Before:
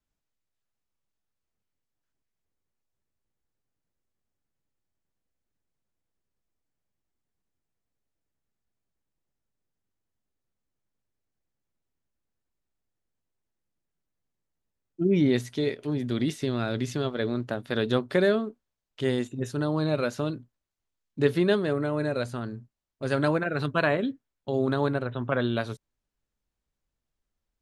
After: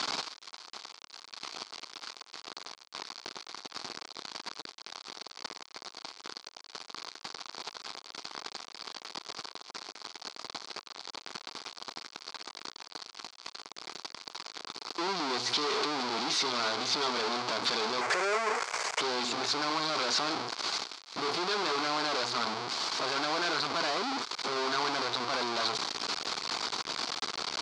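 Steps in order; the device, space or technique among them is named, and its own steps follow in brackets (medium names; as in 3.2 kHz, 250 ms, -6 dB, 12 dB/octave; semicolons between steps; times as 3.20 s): home computer beeper (one-bit comparator; cabinet simulation 520–5500 Hz, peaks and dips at 560 Hz -9 dB, 1.1 kHz +3 dB, 1.8 kHz -7 dB, 2.8 kHz -5 dB, 4.5 kHz +7 dB); 18.01–19.01 s: ten-band graphic EQ 250 Hz -12 dB, 500 Hz +8 dB, 2 kHz +10 dB, 4 kHz -12 dB, 8 kHz +10 dB; trim +6 dB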